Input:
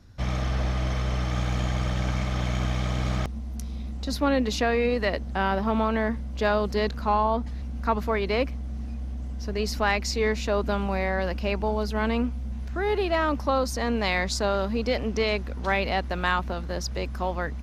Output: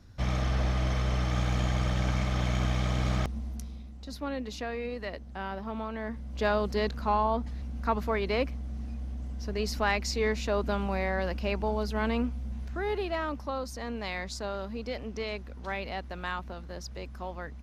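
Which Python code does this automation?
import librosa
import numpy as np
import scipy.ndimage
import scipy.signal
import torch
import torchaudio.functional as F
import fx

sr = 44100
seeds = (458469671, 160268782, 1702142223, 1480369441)

y = fx.gain(x, sr, db=fx.line((3.46, -1.5), (3.89, -11.5), (5.97, -11.5), (6.4, -3.5), (12.58, -3.5), (13.51, -10.0)))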